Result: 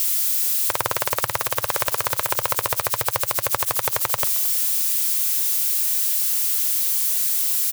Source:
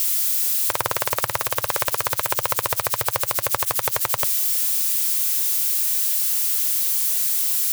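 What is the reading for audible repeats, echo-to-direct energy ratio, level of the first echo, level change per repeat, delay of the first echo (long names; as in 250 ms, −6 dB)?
2, −20.0 dB, −20.0 dB, −13.0 dB, 221 ms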